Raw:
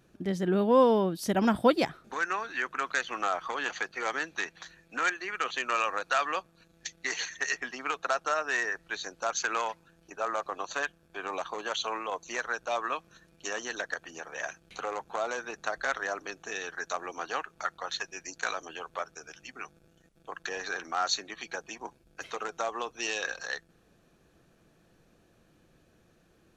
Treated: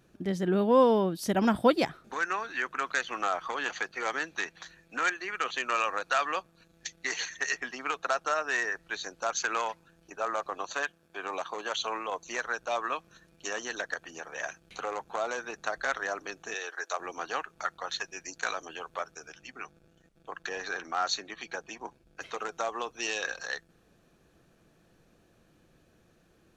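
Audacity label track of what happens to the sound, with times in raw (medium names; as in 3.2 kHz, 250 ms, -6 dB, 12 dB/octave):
10.700000	11.740000	high-pass 170 Hz 6 dB/octave
16.540000	17.000000	high-pass 370 Hz 24 dB/octave
19.280000	22.340000	treble shelf 7.5 kHz -7 dB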